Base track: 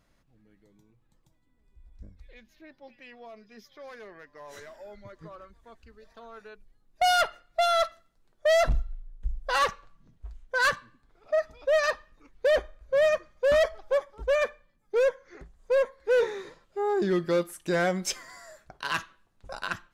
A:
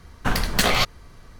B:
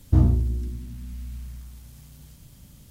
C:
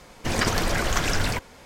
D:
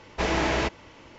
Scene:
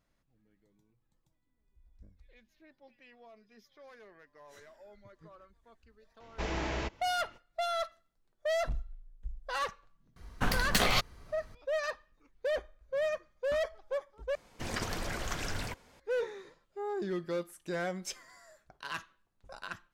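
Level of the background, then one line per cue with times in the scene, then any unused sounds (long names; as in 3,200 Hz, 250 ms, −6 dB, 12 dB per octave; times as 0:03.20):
base track −9.5 dB
0:06.20: mix in D −11 dB + low-shelf EQ 71 Hz +9.5 dB
0:10.16: mix in A −7.5 dB
0:14.35: overwrite with C −12.5 dB
not used: B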